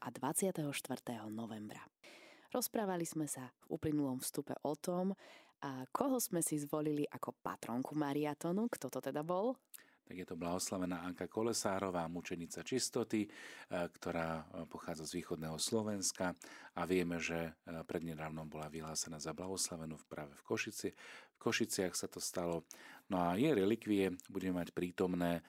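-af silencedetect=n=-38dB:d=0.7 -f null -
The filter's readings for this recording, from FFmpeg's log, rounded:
silence_start: 1.72
silence_end: 2.55 | silence_duration: 0.83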